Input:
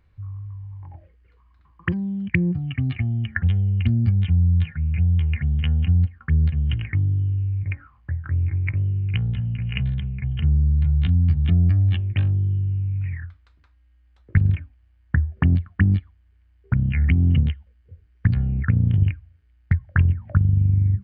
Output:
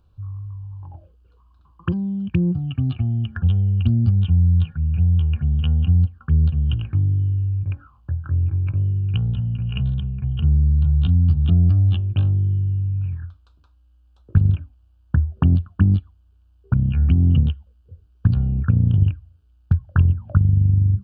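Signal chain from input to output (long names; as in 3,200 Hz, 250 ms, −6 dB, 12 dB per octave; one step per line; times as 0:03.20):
Butterworth band-reject 2,000 Hz, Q 1.4
level +2 dB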